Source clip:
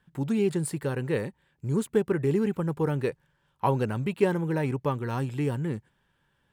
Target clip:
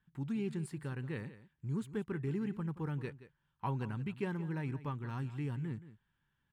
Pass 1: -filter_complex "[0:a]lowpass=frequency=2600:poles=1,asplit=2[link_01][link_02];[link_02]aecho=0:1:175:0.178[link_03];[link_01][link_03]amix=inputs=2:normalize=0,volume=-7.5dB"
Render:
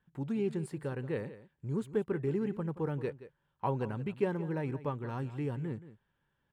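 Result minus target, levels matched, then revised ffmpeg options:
500 Hz band +5.5 dB
-filter_complex "[0:a]lowpass=frequency=2600:poles=1,equalizer=frequency=530:width_type=o:width=1.2:gain=-12.5,asplit=2[link_01][link_02];[link_02]aecho=0:1:175:0.178[link_03];[link_01][link_03]amix=inputs=2:normalize=0,volume=-7.5dB"

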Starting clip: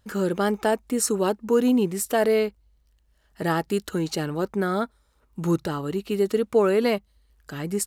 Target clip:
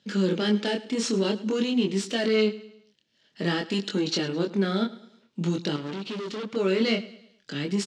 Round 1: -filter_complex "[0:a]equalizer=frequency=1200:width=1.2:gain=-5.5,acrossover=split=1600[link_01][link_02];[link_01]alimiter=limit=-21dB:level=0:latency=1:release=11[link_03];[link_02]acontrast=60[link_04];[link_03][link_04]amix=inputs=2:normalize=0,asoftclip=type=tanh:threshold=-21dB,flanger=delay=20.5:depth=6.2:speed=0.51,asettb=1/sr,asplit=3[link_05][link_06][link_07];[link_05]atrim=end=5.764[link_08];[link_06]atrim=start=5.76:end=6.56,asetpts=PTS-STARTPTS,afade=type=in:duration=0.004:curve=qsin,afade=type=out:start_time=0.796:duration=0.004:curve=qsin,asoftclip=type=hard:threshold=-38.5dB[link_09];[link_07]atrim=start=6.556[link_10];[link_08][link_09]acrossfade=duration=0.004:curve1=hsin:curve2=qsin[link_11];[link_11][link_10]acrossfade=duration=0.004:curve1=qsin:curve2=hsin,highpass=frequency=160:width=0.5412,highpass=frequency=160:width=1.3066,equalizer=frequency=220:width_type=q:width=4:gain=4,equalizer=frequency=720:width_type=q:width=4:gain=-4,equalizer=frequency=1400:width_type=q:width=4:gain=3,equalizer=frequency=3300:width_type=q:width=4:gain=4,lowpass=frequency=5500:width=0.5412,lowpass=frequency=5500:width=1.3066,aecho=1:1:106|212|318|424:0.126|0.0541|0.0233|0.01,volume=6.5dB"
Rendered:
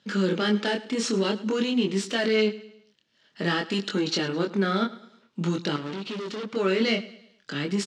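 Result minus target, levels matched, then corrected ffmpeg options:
1,000 Hz band +3.5 dB
-filter_complex "[0:a]equalizer=frequency=1200:width=1.2:gain=-13,acrossover=split=1600[link_01][link_02];[link_01]alimiter=limit=-21dB:level=0:latency=1:release=11[link_03];[link_02]acontrast=60[link_04];[link_03][link_04]amix=inputs=2:normalize=0,asoftclip=type=tanh:threshold=-21dB,flanger=delay=20.5:depth=6.2:speed=0.51,asettb=1/sr,asplit=3[link_05][link_06][link_07];[link_05]atrim=end=5.764[link_08];[link_06]atrim=start=5.76:end=6.56,asetpts=PTS-STARTPTS,afade=type=in:duration=0.004:curve=qsin,afade=type=out:start_time=0.796:duration=0.004:curve=qsin,asoftclip=type=hard:threshold=-38.5dB[link_09];[link_07]atrim=start=6.556[link_10];[link_08][link_09]acrossfade=duration=0.004:curve1=hsin:curve2=qsin[link_11];[link_11][link_10]acrossfade=duration=0.004:curve1=qsin:curve2=hsin,highpass=frequency=160:width=0.5412,highpass=frequency=160:width=1.3066,equalizer=frequency=220:width_type=q:width=4:gain=4,equalizer=frequency=720:width_type=q:width=4:gain=-4,equalizer=frequency=1400:width_type=q:width=4:gain=3,equalizer=frequency=3300:width_type=q:width=4:gain=4,lowpass=frequency=5500:width=0.5412,lowpass=frequency=5500:width=1.3066,aecho=1:1:106|212|318|424:0.126|0.0541|0.0233|0.01,volume=6.5dB"

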